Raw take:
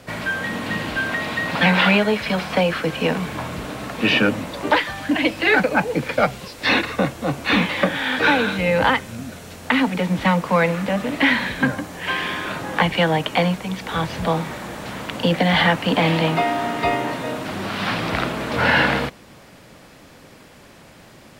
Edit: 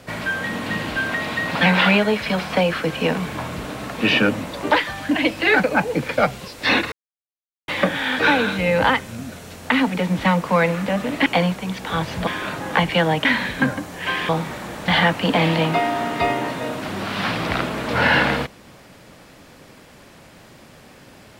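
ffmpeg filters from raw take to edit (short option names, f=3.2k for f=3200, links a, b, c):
-filter_complex "[0:a]asplit=8[a][b][c][d][e][f][g][h];[a]atrim=end=6.92,asetpts=PTS-STARTPTS,afade=t=out:st=6.916:d=0.004:c=hsin[i];[b]atrim=start=6.92:end=7.68,asetpts=PTS-STARTPTS,volume=0[j];[c]atrim=start=7.68:end=11.262,asetpts=PTS-STARTPTS,afade=t=in:d=0.004:c=hsin[k];[d]atrim=start=13.278:end=14.292[l];[e]atrim=start=12.298:end=13.282[m];[f]atrim=start=11.258:end=12.302[n];[g]atrim=start=14.288:end=14.882[o];[h]atrim=start=15.508[p];[i][j][k]concat=n=3:v=0:a=1[q];[q][l]acrossfade=d=0.004:c1=hsin:c2=hsin[r];[r][m]acrossfade=d=0.004:c1=hsin:c2=hsin[s];[s][n]acrossfade=d=0.004:c1=hsin:c2=hsin[t];[t][o]acrossfade=d=0.004:c1=hsin:c2=hsin[u];[u][p]acrossfade=d=0.004:c1=hsin:c2=hsin"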